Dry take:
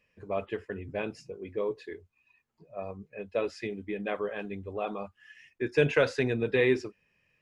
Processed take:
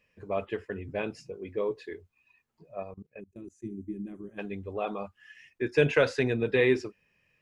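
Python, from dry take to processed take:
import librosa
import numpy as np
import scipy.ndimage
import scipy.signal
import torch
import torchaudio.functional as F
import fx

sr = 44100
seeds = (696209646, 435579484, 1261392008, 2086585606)

y = fx.spec_box(x, sr, start_s=3.2, length_s=1.18, low_hz=390.0, high_hz=5800.0, gain_db=-26)
y = fx.level_steps(y, sr, step_db=22, at=(2.82, 3.63), fade=0.02)
y = F.gain(torch.from_numpy(y), 1.0).numpy()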